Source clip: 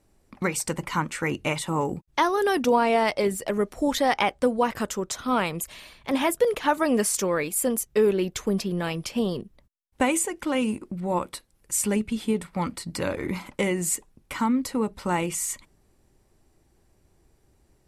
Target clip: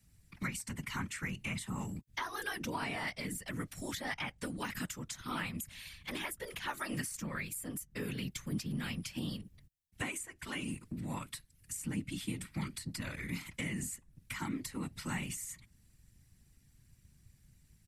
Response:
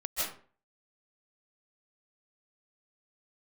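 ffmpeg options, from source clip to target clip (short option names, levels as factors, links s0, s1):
-filter_complex "[0:a]firequalizer=gain_entry='entry(120,0);entry(350,-25);entry(1800,-3)':delay=0.05:min_phase=1,afftfilt=real='hypot(re,im)*cos(2*PI*random(0))':imag='hypot(re,im)*sin(2*PI*random(1))':win_size=512:overlap=0.75,asplit=2[s0][s1];[s1]acompressor=threshold=0.00631:ratio=6,volume=1.26[s2];[s0][s2]amix=inputs=2:normalize=0,highshelf=f=6900:g=5.5,acrossover=split=96|1600[s3][s4][s5];[s3]acompressor=threshold=0.00251:ratio=4[s6];[s5]acompressor=threshold=0.00708:ratio=4[s7];[s6][s4][s7]amix=inputs=3:normalize=0"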